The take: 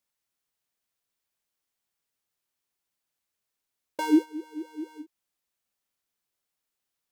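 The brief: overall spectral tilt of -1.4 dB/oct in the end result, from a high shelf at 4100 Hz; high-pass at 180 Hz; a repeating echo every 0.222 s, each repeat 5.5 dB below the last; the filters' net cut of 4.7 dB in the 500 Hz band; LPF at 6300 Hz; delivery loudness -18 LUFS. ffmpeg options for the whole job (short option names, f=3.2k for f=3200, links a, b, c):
-af "highpass=180,lowpass=6.3k,equalizer=f=500:t=o:g=-8.5,highshelf=f=4.1k:g=-5.5,aecho=1:1:222|444|666|888|1110|1332|1554:0.531|0.281|0.149|0.079|0.0419|0.0222|0.0118,volume=13dB"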